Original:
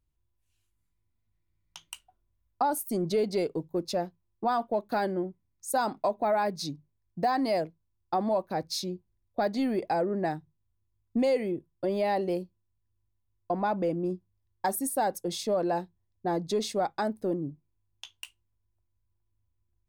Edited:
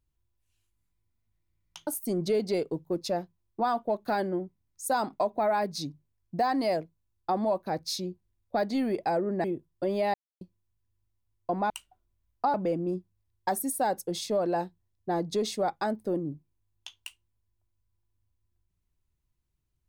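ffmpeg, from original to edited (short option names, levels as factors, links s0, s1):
-filter_complex "[0:a]asplit=7[s0][s1][s2][s3][s4][s5][s6];[s0]atrim=end=1.872[s7];[s1]atrim=start=2.708:end=10.282[s8];[s2]atrim=start=11.448:end=12.15,asetpts=PTS-STARTPTS,afade=t=out:st=0.698:d=0.004:c=hsin[s9];[s3]atrim=start=12.15:end=12.42,asetpts=PTS-STARTPTS,volume=0[s10];[s4]atrim=start=12.42:end=13.712,asetpts=PTS-STARTPTS,afade=t=in:d=0.004:c=hsin[s11];[s5]atrim=start=1.868:end=2.712[s12];[s6]atrim=start=13.708[s13];[s7][s8]acrossfade=d=0.004:c1=hsin:c2=hsin[s14];[s9][s10][s11]concat=n=3:v=0:a=1[s15];[s14][s15]acrossfade=d=0.004:c1=hsin:c2=hsin[s16];[s16][s12]acrossfade=d=0.004:c1=hsin:c2=hsin[s17];[s17][s13]acrossfade=d=0.004:c1=hsin:c2=hsin"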